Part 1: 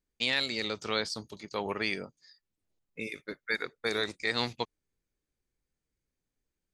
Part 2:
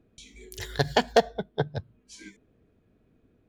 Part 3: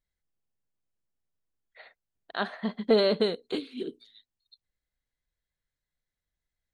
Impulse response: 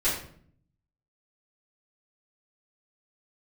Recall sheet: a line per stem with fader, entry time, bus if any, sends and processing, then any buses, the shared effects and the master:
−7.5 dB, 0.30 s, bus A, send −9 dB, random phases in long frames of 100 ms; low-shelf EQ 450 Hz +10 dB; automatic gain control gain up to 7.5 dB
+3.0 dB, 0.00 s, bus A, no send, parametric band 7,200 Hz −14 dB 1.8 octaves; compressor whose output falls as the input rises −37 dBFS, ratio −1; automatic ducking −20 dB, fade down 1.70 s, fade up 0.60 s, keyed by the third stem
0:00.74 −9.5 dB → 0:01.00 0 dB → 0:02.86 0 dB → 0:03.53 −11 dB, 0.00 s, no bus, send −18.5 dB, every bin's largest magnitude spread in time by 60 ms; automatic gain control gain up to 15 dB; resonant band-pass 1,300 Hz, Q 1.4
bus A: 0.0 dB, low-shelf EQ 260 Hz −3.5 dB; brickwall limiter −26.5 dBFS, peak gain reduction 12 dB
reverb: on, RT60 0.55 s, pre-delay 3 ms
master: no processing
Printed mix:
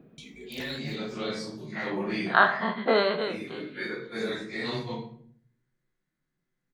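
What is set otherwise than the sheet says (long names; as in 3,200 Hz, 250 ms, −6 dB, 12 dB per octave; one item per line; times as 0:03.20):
stem 1 −7.5 dB → −16.0 dB
master: extra low shelf with overshoot 110 Hz −10.5 dB, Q 3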